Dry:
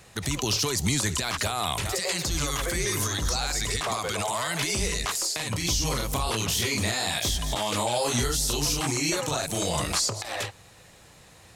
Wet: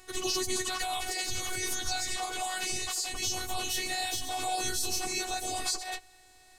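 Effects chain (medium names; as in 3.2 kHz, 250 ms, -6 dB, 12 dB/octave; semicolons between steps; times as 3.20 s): robot voice 372 Hz; plain phase-vocoder stretch 0.57×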